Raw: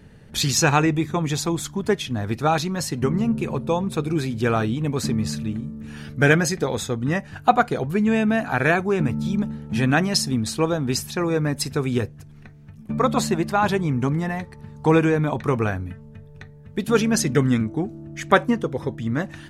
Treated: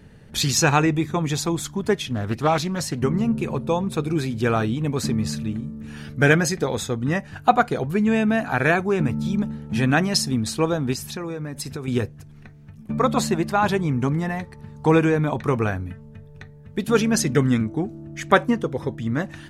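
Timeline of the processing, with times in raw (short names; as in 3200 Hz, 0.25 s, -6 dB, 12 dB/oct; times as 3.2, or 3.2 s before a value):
2.12–3 Doppler distortion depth 0.26 ms
10.93–11.88 compressor 12:1, threshold -26 dBFS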